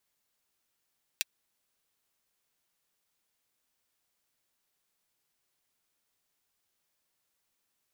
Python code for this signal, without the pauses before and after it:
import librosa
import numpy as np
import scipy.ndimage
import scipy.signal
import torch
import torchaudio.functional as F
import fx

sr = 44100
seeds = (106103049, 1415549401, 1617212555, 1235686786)

y = fx.drum_hat(sr, length_s=0.24, from_hz=2500.0, decay_s=0.03)